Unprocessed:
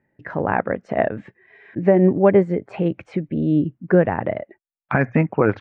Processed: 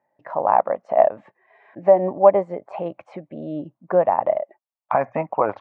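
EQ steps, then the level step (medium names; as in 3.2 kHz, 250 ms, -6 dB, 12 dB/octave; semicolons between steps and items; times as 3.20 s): high-pass 330 Hz 6 dB/octave; high-order bell 800 Hz +15 dB 1.3 oct; dynamic bell 1.6 kHz, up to -5 dB, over -39 dBFS, Q 6.9; -8.0 dB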